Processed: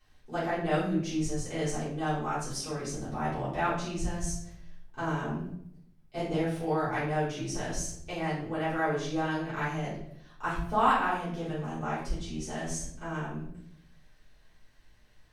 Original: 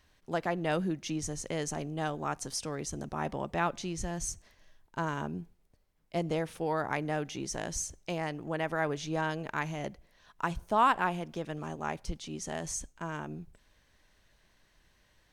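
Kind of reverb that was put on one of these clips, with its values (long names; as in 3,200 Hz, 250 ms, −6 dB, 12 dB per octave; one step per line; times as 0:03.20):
rectangular room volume 130 cubic metres, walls mixed, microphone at 3.6 metres
level −11 dB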